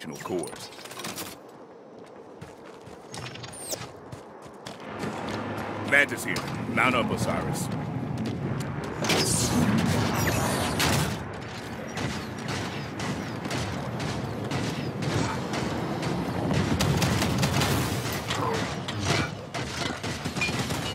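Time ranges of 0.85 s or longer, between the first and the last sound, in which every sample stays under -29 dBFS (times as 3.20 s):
1.28–2.42 s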